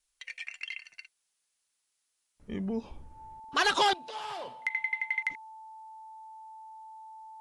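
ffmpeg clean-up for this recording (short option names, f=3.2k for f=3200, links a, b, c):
-af "bandreject=f=880:w=30,agate=range=-21dB:threshold=-72dB"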